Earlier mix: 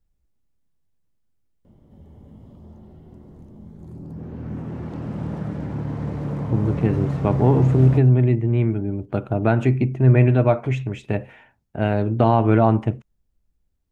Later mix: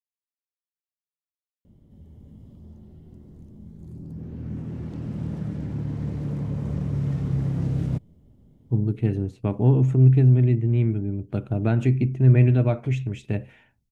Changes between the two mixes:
speech: entry +2.20 s; master: add bell 930 Hz -11 dB 2.5 oct

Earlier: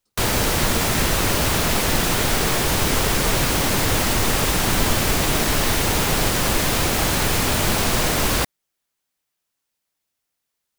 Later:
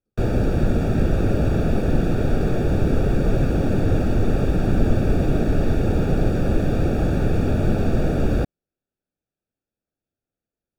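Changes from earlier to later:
background +4.5 dB; master: add running mean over 43 samples

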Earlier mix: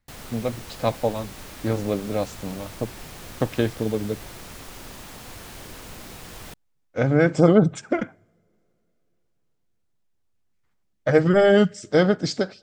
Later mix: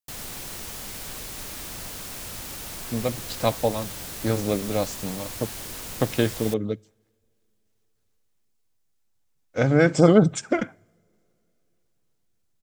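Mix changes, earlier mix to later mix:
speech: entry +2.60 s; master: add high shelf 4100 Hz +9.5 dB

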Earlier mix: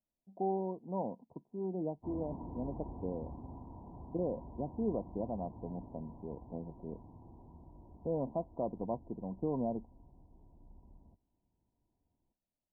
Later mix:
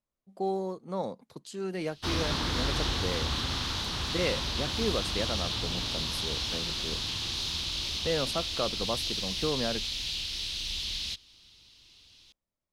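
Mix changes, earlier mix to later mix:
background +8.5 dB; master: remove rippled Chebyshev low-pass 1000 Hz, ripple 6 dB

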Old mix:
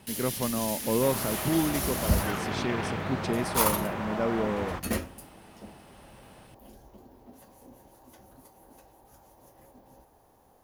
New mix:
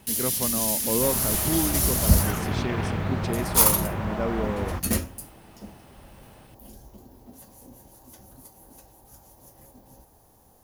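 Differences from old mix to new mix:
first sound: add tone controls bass +7 dB, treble +10 dB; second sound: remove HPF 290 Hz 6 dB/oct

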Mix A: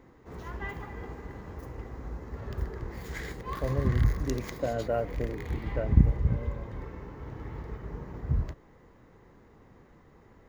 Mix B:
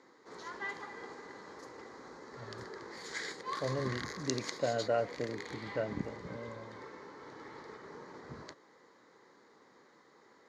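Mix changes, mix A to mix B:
background: add speaker cabinet 300–7700 Hz, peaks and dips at 690 Hz -5 dB, 2700 Hz -10 dB, 4300 Hz +7 dB; master: add tilt +2 dB/oct

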